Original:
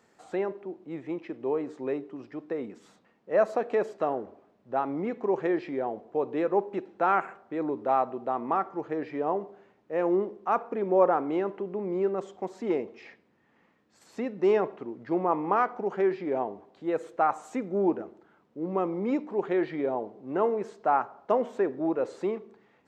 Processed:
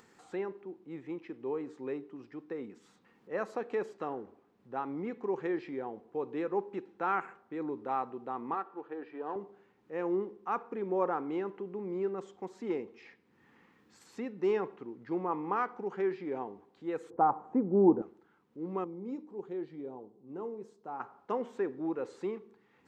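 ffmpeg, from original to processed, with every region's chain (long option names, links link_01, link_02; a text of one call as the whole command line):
ffmpeg -i in.wav -filter_complex "[0:a]asettb=1/sr,asplit=3[link_01][link_02][link_03];[link_01]atrim=end=8.544[link_04];[link_02]atrim=start=8.54:end=9.36,asetpts=PTS-STARTPTS,afade=type=in:duration=0.004:curve=qsin,afade=type=out:start_time=0.816:duration=0.004:curve=qsin,aeval=exprs='if(lt(val(0),0),0.708*val(0),val(0))':channel_layout=same,highpass=310,lowpass=2900,bandreject=frequency=2100:width=5.1[link_05];[link_03]atrim=start=9.356[link_06];[link_04][link_05]acrossfade=duration=0.004:curve1=hsin:curve2=qsin[link_07];[link_07][link_06]acrossfade=duration=0.004:curve1=qsin:curve2=hsin,asettb=1/sr,asplit=3[link_08][link_09][link_10];[link_08]atrim=end=17.104[link_11];[link_09]atrim=start=17.1:end=18.02,asetpts=PTS-STARTPTS,afade=type=in:duration=0.004:curve=qsin,afade=type=out:start_time=0.916:duration=0.004:curve=qsin,lowpass=frequency=880:width_type=q:width=1.7,lowshelf=frequency=470:gain=11[link_12];[link_10]atrim=start=18.016[link_13];[link_11][link_12]acrossfade=duration=0.004:curve1=hsin:curve2=qsin[link_14];[link_14][link_13]acrossfade=duration=0.004:curve1=qsin:curve2=hsin,asettb=1/sr,asplit=3[link_15][link_16][link_17];[link_15]atrim=end=18.844[link_18];[link_16]atrim=start=18.84:end=21,asetpts=PTS-STARTPTS,afade=type=in:duration=0.004:curve=qsin,afade=type=out:start_time=2.156:duration=0.004:curve=qsin,equalizer=frequency=1900:width_type=o:width=1.9:gain=-13,flanger=delay=5.1:depth=3.1:regen=-77:speed=1.5:shape=sinusoidal[link_19];[link_17]atrim=start=20.996[link_20];[link_18][link_19]acrossfade=duration=0.004:curve1=hsin:curve2=qsin[link_21];[link_21][link_20]acrossfade=duration=0.004:curve1=qsin:curve2=hsin,equalizer=frequency=630:width_type=o:width=0.29:gain=-13.5,acompressor=mode=upward:threshold=-48dB:ratio=2.5,volume=-5.5dB" out.wav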